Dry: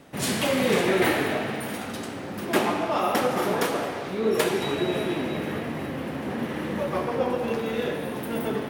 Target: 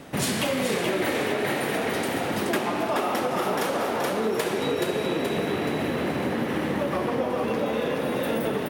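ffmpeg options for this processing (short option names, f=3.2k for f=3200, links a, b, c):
-filter_complex "[0:a]asplit=2[a][b];[b]asplit=5[c][d][e][f][g];[c]adelay=426,afreqshift=43,volume=-3.5dB[h];[d]adelay=852,afreqshift=86,volume=-10.8dB[i];[e]adelay=1278,afreqshift=129,volume=-18.2dB[j];[f]adelay=1704,afreqshift=172,volume=-25.5dB[k];[g]adelay=2130,afreqshift=215,volume=-32.8dB[l];[h][i][j][k][l]amix=inputs=5:normalize=0[m];[a][m]amix=inputs=2:normalize=0,acompressor=threshold=-30dB:ratio=6,volume=7dB"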